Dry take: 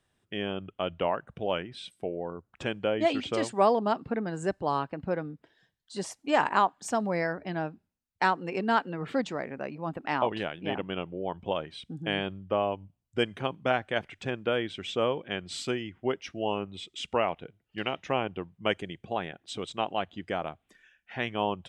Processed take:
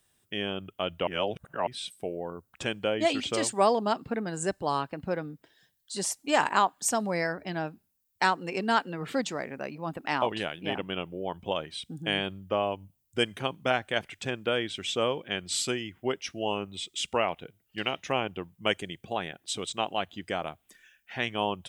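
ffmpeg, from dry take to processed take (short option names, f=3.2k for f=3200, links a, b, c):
-filter_complex "[0:a]asplit=3[a][b][c];[a]atrim=end=1.072[d];[b]atrim=start=1.068:end=1.672,asetpts=PTS-STARTPTS,areverse[e];[c]atrim=start=1.668[f];[d][e]acrossfade=d=0.004:c1=hsin:c2=hsin[g];[g][f]acrossfade=d=0.004:c1=hsin:c2=hsin,aemphasis=mode=production:type=75fm"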